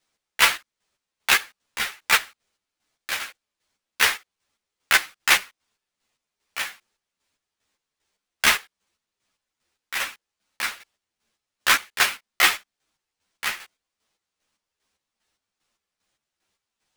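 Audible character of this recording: chopped level 2.5 Hz, depth 65%, duty 40%; aliases and images of a low sample rate 14 kHz, jitter 0%; a shimmering, thickened sound

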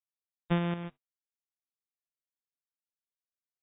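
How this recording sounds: a buzz of ramps at a fixed pitch in blocks of 256 samples; chopped level 0.61 Hz, depth 60%, duty 45%; a quantiser's noise floor 10-bit, dither none; AAC

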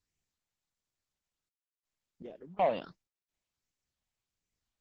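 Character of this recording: random-step tremolo 2.7 Hz, depth 90%; phasing stages 6, 1.4 Hz, lowest notch 350–1200 Hz; Opus

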